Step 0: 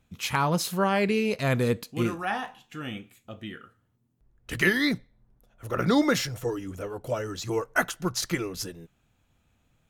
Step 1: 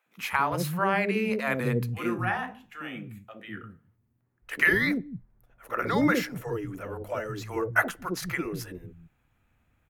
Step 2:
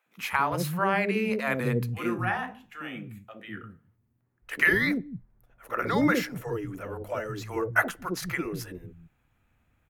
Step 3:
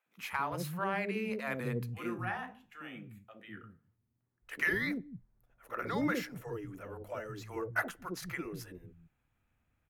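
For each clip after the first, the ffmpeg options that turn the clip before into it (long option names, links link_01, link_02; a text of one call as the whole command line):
ffmpeg -i in.wav -filter_complex "[0:a]aexciter=amount=2.9:drive=2.6:freq=4200,highshelf=frequency=3200:width_type=q:width=1.5:gain=-13,acrossover=split=180|540[link_01][link_02][link_03];[link_02]adelay=60[link_04];[link_01]adelay=210[link_05];[link_05][link_04][link_03]amix=inputs=3:normalize=0" out.wav
ffmpeg -i in.wav -af anull out.wav
ffmpeg -i in.wav -af "asoftclip=type=tanh:threshold=-9.5dB,volume=-8.5dB" out.wav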